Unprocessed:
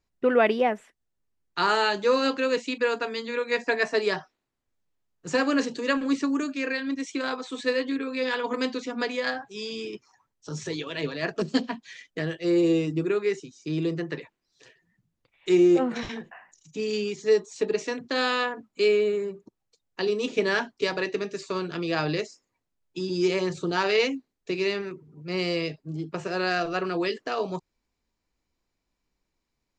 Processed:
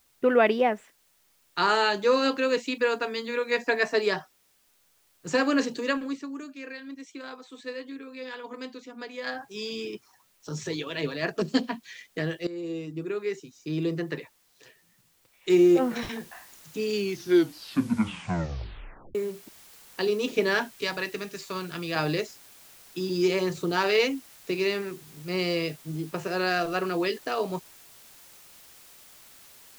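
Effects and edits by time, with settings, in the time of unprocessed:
5.79–9.52 s: dip -11 dB, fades 0.40 s
12.47–14.03 s: fade in, from -17.5 dB
15.50 s: noise floor step -66 dB -52 dB
16.94 s: tape stop 2.21 s
20.74–21.96 s: peaking EQ 410 Hz -7 dB 1.6 oct

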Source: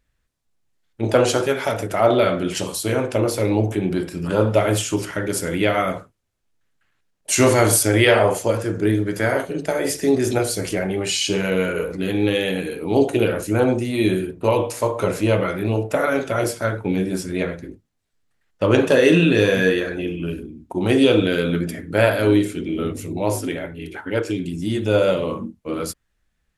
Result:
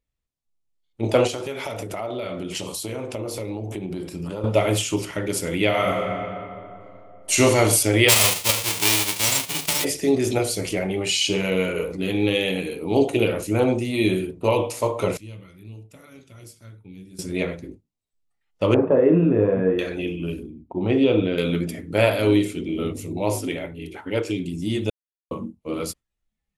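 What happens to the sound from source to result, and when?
1.27–4.44 s: compression, threshold -24 dBFS
5.67–7.34 s: reverb throw, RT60 2.9 s, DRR 0 dB
8.08–9.83 s: formants flattened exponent 0.1
15.17–17.19 s: amplifier tone stack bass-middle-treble 6-0-2
18.74–19.79 s: low-pass 1.3 kHz 24 dB/octave
20.62–21.38 s: tape spacing loss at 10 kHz 30 dB
24.90–25.31 s: mute
whole clip: dynamic bell 2.4 kHz, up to +5 dB, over -38 dBFS, Q 0.99; spectral noise reduction 10 dB; peaking EQ 1.6 kHz -10.5 dB 0.45 oct; trim -2 dB

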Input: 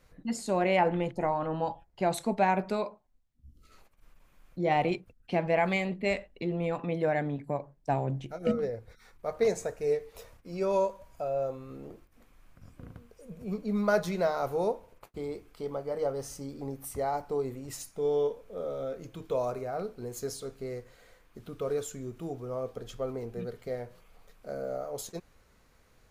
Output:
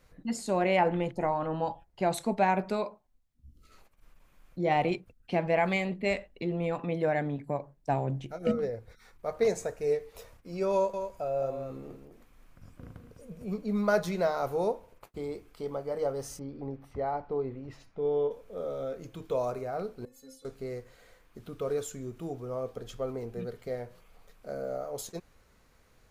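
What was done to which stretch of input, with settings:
10.73–13.46 s: delay 204 ms -8 dB
16.39–18.31 s: distance through air 310 m
20.05–20.45 s: inharmonic resonator 260 Hz, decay 0.27 s, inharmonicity 0.008

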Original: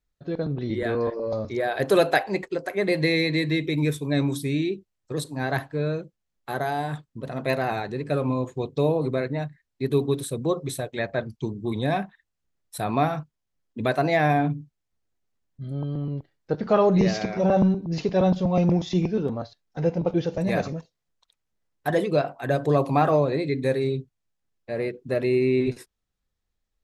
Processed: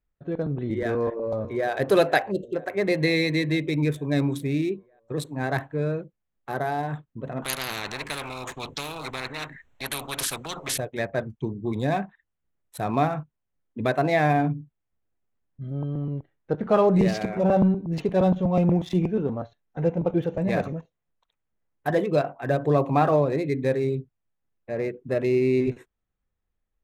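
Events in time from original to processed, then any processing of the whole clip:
0.93–1.70 s: echo throw 470 ms, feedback 70%, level -17.5 dB
2.32–2.54 s: spectral selection erased 710–2700 Hz
7.42–10.78 s: spectrum-flattening compressor 10:1
whole clip: local Wiener filter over 9 samples

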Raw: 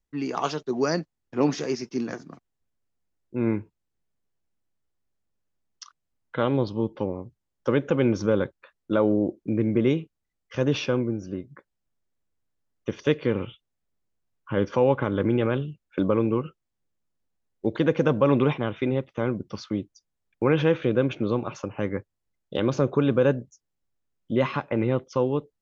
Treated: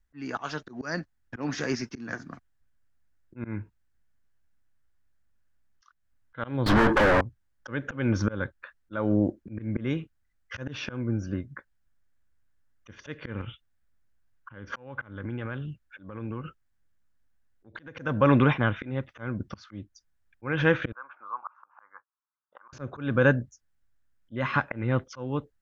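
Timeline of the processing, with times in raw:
6.66–7.21 s: overdrive pedal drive 45 dB, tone 1.4 kHz, clips at -13 dBFS
13.41–17.97 s: compression, threshold -32 dBFS
20.92–22.73 s: Butterworth band-pass 1.1 kHz, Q 2.7
whole clip: bass shelf 200 Hz +11 dB; slow attack 282 ms; fifteen-band graphic EQ 160 Hz -6 dB, 400 Hz -7 dB, 1.6 kHz +11 dB

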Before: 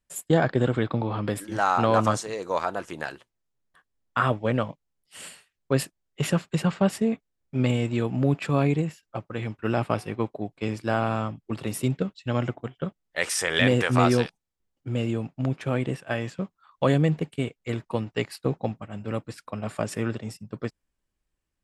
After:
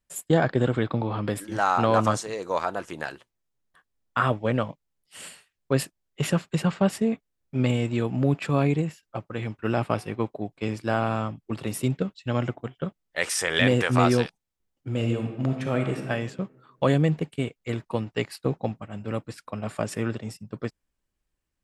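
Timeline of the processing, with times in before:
14.88–16.06 s: reverb throw, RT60 1.3 s, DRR 4 dB

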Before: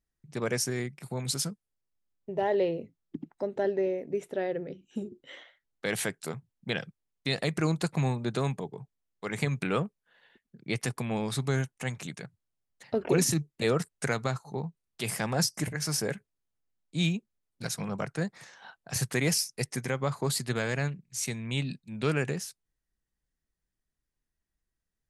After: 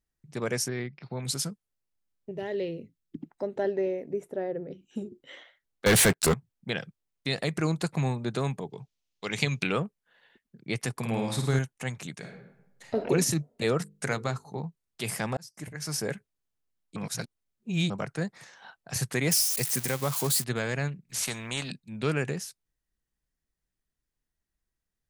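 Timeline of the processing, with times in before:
0.68–1.23 s: elliptic low-pass 5.1 kHz
2.31–3.18 s: peaking EQ 830 Hz -13 dB 1.4 oct
4.13–4.71 s: peaking EQ 3.4 kHz -12.5 dB 2 oct
5.86–6.34 s: waveshaping leveller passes 5
8.70–9.72 s: high-order bell 4 kHz +10 dB
10.96–11.59 s: flutter echo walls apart 9 m, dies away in 0.64 s
12.18–12.94 s: reverb throw, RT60 0.89 s, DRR 0 dB
13.79–14.61 s: hum notches 50/100/150/200/250/300/350/400/450/500 Hz
15.37–16.09 s: fade in
16.96–17.90 s: reverse
19.31–20.44 s: zero-crossing glitches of -22.5 dBFS
21.09–21.72 s: spectrum-flattening compressor 2:1

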